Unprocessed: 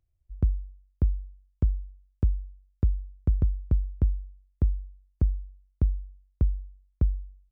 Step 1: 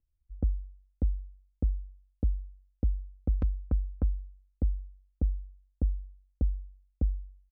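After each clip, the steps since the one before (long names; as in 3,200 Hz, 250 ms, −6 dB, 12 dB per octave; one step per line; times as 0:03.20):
low-pass that shuts in the quiet parts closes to 330 Hz, open at −18 dBFS
tilt shelving filter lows −6 dB, about 630 Hz
comb filter 3.9 ms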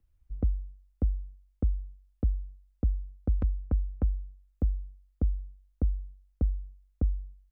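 in parallel at −9 dB: slack as between gear wheels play −45 dBFS
on the sum: multiband upward and downward compressor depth 40%
level −1.5 dB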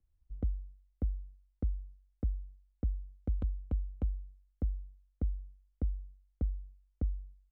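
running median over 25 samples
level −6 dB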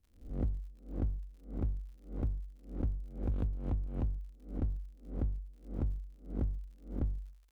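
peak hold with a rise ahead of every peak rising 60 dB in 0.42 s
asymmetric clip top −39 dBFS
surface crackle 85 per second −58 dBFS
level +2 dB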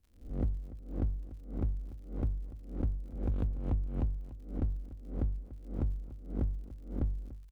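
single-tap delay 291 ms −16.5 dB
level +1.5 dB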